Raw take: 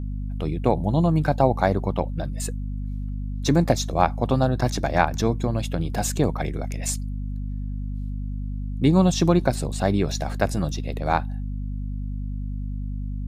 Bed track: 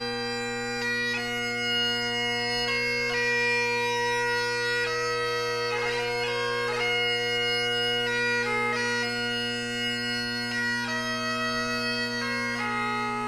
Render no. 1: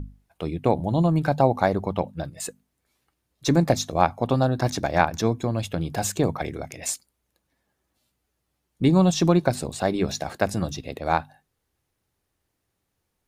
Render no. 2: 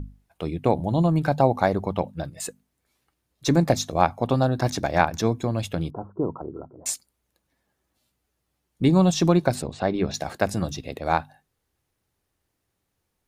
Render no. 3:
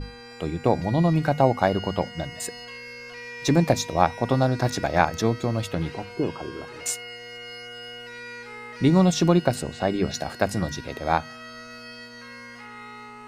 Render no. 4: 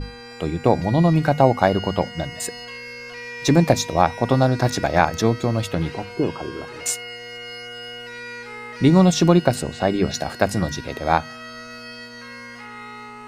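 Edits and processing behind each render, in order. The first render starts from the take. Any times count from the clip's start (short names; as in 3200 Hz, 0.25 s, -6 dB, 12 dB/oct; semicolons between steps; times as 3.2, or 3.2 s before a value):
notches 50/100/150/200/250 Hz
5.9–6.86 rippled Chebyshev low-pass 1400 Hz, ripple 9 dB; 9.62–10.14 air absorption 150 m
add bed track -13 dB
gain +4 dB; limiter -1 dBFS, peak gain reduction 2 dB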